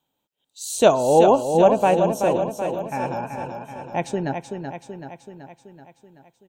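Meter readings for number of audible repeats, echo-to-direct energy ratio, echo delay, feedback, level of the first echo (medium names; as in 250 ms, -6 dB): 7, -4.5 dB, 380 ms, 58%, -6.5 dB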